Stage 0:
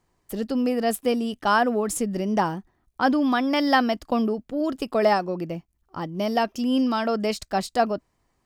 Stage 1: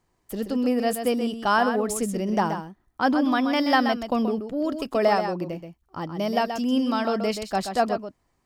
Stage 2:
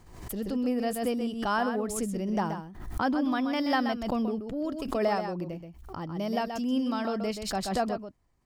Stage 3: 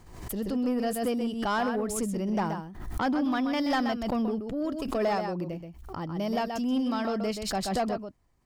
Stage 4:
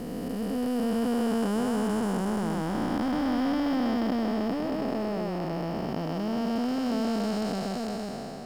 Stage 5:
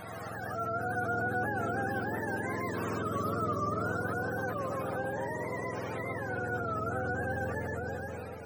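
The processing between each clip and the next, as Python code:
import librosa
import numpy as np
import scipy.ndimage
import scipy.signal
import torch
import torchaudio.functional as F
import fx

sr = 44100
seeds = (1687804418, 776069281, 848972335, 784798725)

y1 = x + 10.0 ** (-8.0 / 20.0) * np.pad(x, (int(129 * sr / 1000.0), 0))[:len(x)]
y1 = F.gain(torch.from_numpy(y1), -1.0).numpy()
y2 = fx.low_shelf(y1, sr, hz=150.0, db=9.5)
y2 = fx.pre_swell(y2, sr, db_per_s=64.0)
y2 = F.gain(torch.from_numpy(y2), -7.5).numpy()
y3 = 10.0 ** (-22.0 / 20.0) * np.tanh(y2 / 10.0 ** (-22.0 / 20.0))
y3 = F.gain(torch.from_numpy(y3), 2.0).numpy()
y4 = fx.spec_blur(y3, sr, span_ms=1310.0)
y4 = fx.quant_companded(y4, sr, bits=8)
y4 = F.gain(torch.from_numpy(y4), 5.5).numpy()
y5 = fx.octave_mirror(y4, sr, pivot_hz=580.0)
y5 = fx.peak_eq(y5, sr, hz=1600.0, db=-6.0, octaves=1.1)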